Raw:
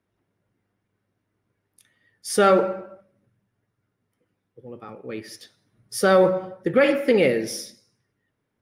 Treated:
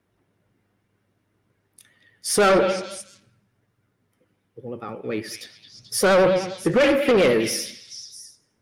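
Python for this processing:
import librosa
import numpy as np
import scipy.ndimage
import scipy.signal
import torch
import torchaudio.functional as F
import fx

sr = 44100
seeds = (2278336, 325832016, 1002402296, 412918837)

y = 10.0 ** (-19.0 / 20.0) * np.tanh(x / 10.0 ** (-19.0 / 20.0))
y = fx.echo_stepped(y, sr, ms=218, hz=2900.0, octaves=0.7, feedback_pct=70, wet_db=-6.0)
y = fx.vibrato(y, sr, rate_hz=10.0, depth_cents=50.0)
y = y * 10.0 ** (6.0 / 20.0)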